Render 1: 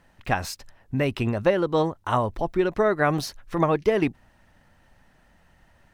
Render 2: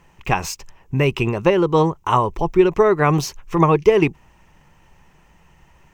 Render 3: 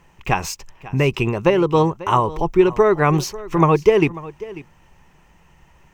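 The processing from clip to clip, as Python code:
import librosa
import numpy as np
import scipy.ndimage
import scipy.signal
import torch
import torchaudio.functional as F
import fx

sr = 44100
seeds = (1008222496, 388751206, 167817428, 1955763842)

y1 = fx.ripple_eq(x, sr, per_octave=0.74, db=9)
y1 = F.gain(torch.from_numpy(y1), 5.0).numpy()
y2 = y1 + 10.0 ** (-18.0 / 20.0) * np.pad(y1, (int(543 * sr / 1000.0), 0))[:len(y1)]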